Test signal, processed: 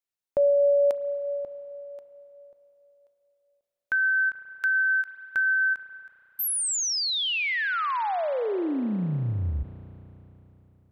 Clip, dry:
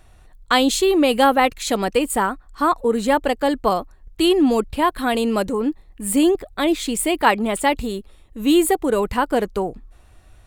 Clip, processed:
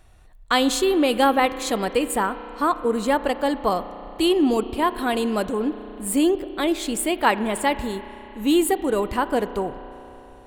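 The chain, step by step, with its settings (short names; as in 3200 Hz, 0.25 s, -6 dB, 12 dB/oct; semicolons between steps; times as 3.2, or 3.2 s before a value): spring tank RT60 3.7 s, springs 33 ms, chirp 30 ms, DRR 12.5 dB; ending taper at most 460 dB/s; gain -3 dB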